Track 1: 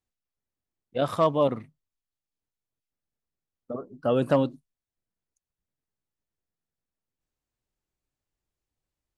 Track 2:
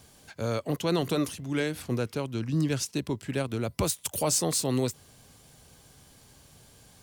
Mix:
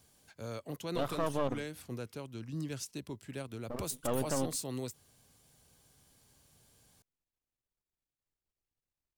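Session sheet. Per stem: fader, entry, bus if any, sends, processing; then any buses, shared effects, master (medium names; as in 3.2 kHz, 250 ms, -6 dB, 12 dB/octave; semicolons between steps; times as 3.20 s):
-5.0 dB, 0.00 s, no send, partial rectifier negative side -12 dB
-12.0 dB, 0.00 s, no send, treble shelf 7.6 kHz +5.5 dB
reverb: none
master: peak limiter -20.5 dBFS, peak gain reduction 7.5 dB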